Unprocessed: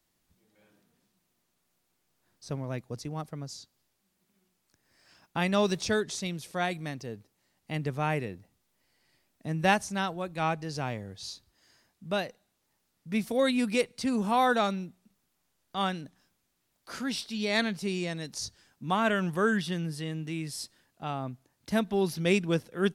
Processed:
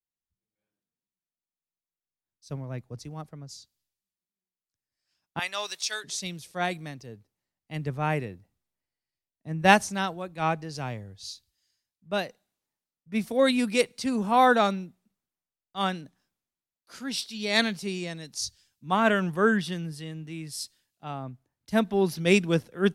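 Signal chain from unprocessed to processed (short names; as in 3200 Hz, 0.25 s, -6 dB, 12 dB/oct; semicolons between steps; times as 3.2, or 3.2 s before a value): 5.39–6.04 HPF 960 Hz 12 dB/oct; three-band expander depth 70%; gain +1 dB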